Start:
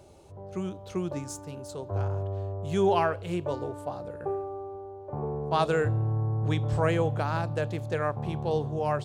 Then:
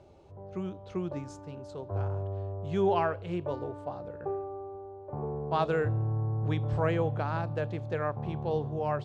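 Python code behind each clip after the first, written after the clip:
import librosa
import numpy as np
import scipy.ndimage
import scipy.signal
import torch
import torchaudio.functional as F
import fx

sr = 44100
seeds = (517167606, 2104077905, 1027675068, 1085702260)

y = scipy.signal.sosfilt(scipy.signal.butter(2, 5900.0, 'lowpass', fs=sr, output='sos'), x)
y = fx.high_shelf(y, sr, hz=4500.0, db=-10.0)
y = y * 10.0 ** (-2.5 / 20.0)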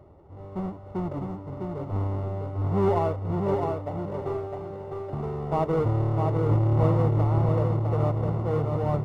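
y = fx.halfwave_hold(x, sr)
y = scipy.signal.savgol_filter(y, 65, 4, mode='constant')
y = fx.echo_feedback(y, sr, ms=656, feedback_pct=27, wet_db=-4.0)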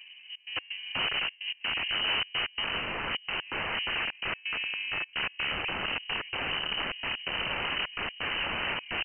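y = fx.step_gate(x, sr, bpm=128, pattern='xxx.x.xx', floor_db=-24.0, edge_ms=4.5)
y = (np.mod(10.0 ** (28.0 / 20.0) * y + 1.0, 2.0) - 1.0) / 10.0 ** (28.0 / 20.0)
y = fx.freq_invert(y, sr, carrier_hz=3000)
y = y * 10.0 ** (2.0 / 20.0)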